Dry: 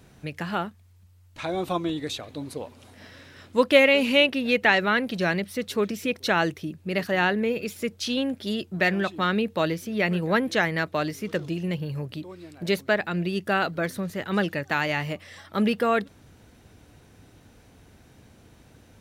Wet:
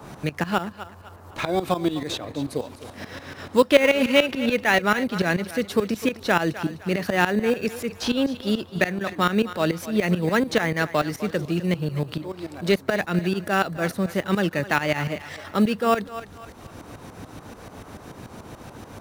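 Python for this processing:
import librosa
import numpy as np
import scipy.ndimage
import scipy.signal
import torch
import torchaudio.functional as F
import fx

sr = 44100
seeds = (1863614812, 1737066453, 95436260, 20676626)

p1 = fx.sample_hold(x, sr, seeds[0], rate_hz=4200.0, jitter_pct=0)
p2 = x + F.gain(torch.from_numpy(p1), -11.0).numpy()
p3 = fx.tremolo_shape(p2, sr, shape='saw_up', hz=6.9, depth_pct=85)
p4 = fx.level_steps(p3, sr, step_db=11, at=(8.64, 9.11))
p5 = fx.dmg_noise_band(p4, sr, seeds[1], low_hz=120.0, high_hz=1200.0, level_db=-62.0)
p6 = p5 + fx.echo_thinned(p5, sr, ms=254, feedback_pct=27, hz=420.0, wet_db=-15.0, dry=0)
p7 = fx.band_squash(p6, sr, depth_pct=40)
y = F.gain(torch.from_numpy(p7), 5.0).numpy()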